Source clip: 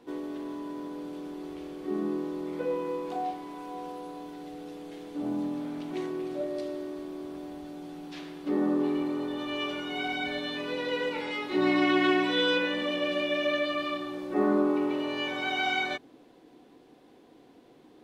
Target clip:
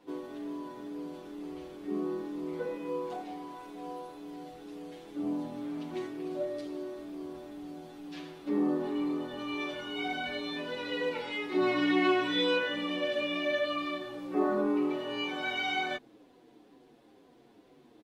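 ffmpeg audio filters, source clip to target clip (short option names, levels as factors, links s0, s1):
-filter_complex "[0:a]asplit=2[s0][s1];[s1]adelay=7.2,afreqshift=-2.1[s2];[s0][s2]amix=inputs=2:normalize=1"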